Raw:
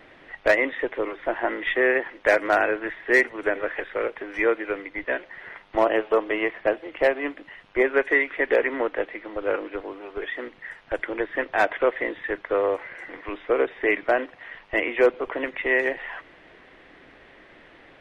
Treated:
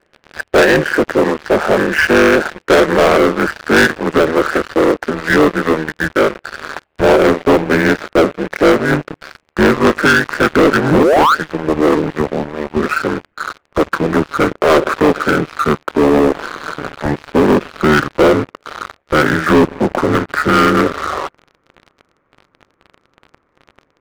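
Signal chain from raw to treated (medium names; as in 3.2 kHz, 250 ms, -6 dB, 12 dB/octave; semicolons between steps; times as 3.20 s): gliding tape speed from 85% -> 65%; peaking EQ 460 Hz +7 dB 0.44 oct; painted sound rise, 10.91–11.35 s, 220–1500 Hz -21 dBFS; ring modulator 76 Hz; waveshaping leveller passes 5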